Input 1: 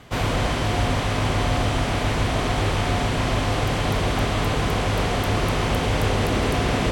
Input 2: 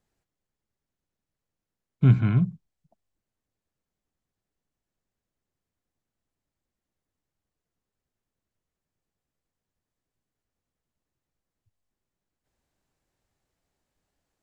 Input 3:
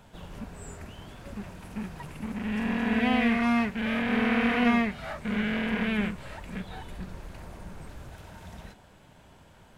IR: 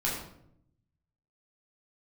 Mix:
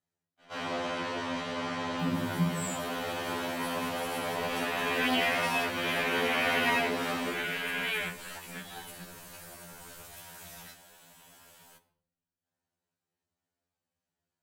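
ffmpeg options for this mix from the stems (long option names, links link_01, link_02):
-filter_complex "[0:a]acrossover=split=230 6700:gain=0.0631 1 0.224[link_01][link_02][link_03];[link_01][link_02][link_03]amix=inputs=3:normalize=0,adelay=400,volume=-13dB,asplit=2[link_04][link_05];[link_05]volume=-4dB[link_06];[1:a]highpass=110,volume=-11.5dB,asplit=3[link_07][link_08][link_09];[link_08]volume=-5dB[link_10];[2:a]aemphasis=mode=production:type=riaa,adelay=2000,volume=-1dB,asplit=2[link_11][link_12];[link_12]volume=-15.5dB[link_13];[link_09]apad=whole_len=322804[link_14];[link_04][link_14]sidechaincompress=threshold=-48dB:ratio=8:attack=16:release=608[link_15];[3:a]atrim=start_sample=2205[link_16];[link_06][link_10][link_13]amix=inputs=3:normalize=0[link_17];[link_17][link_16]afir=irnorm=-1:irlink=0[link_18];[link_15][link_07][link_11][link_18]amix=inputs=4:normalize=0,afftfilt=real='re*2*eq(mod(b,4),0)':imag='im*2*eq(mod(b,4),0)':win_size=2048:overlap=0.75"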